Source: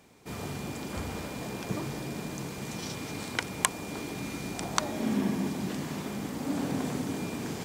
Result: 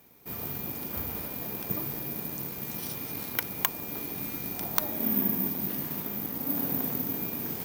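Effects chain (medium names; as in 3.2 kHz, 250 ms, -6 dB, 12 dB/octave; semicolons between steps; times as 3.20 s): careless resampling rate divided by 3×, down filtered, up zero stuff; trim -3.5 dB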